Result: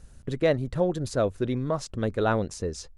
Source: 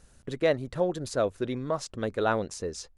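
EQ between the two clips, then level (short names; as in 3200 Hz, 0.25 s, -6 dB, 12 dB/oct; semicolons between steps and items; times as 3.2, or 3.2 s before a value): low shelf 210 Hz +10 dB; 0.0 dB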